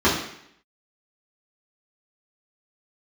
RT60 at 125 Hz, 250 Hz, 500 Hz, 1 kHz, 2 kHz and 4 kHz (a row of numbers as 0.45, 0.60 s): 0.65, 0.70, 0.70, 0.70, 0.75, 0.70 s